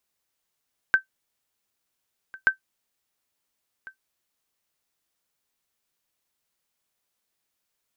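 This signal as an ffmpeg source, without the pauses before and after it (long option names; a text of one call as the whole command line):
ffmpeg -f lavfi -i "aevalsrc='0.355*(sin(2*PI*1550*mod(t,1.53))*exp(-6.91*mod(t,1.53)/0.11)+0.075*sin(2*PI*1550*max(mod(t,1.53)-1.4,0))*exp(-6.91*max(mod(t,1.53)-1.4,0)/0.11))':duration=3.06:sample_rate=44100" out.wav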